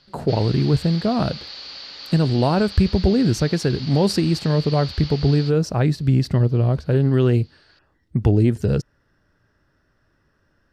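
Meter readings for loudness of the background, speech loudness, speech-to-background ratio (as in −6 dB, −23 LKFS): −34.0 LKFS, −20.0 LKFS, 14.0 dB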